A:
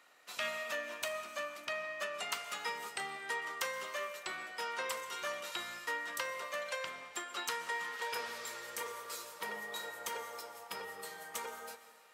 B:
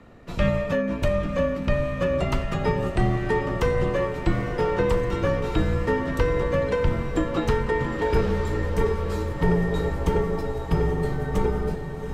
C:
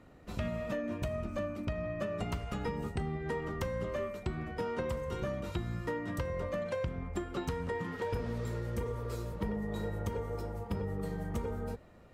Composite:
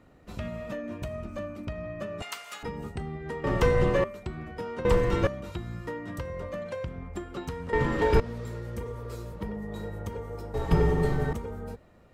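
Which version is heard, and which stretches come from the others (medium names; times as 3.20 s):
C
2.22–2.63 s: from A
3.44–4.04 s: from B
4.85–5.27 s: from B
7.73–8.20 s: from B
10.54–11.33 s: from B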